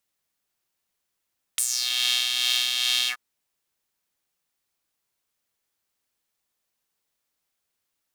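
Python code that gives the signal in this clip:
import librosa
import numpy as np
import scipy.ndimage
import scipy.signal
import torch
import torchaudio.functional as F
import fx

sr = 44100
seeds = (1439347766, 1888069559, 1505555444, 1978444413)

y = fx.sub_patch_tremolo(sr, seeds[0], note=59, wave='square', wave2='saw', interval_st=0, detune_cents=22, level2_db=-3.5, sub_db=-2.5, noise_db=-30.0, kind='highpass', cutoff_hz=1200.0, q=3.8, env_oct=3.0, env_decay_s=0.31, env_sustain_pct=50, attack_ms=3.2, decay_s=0.08, sustain_db=-8.5, release_s=0.08, note_s=1.5, lfo_hz=2.4, tremolo_db=3.5)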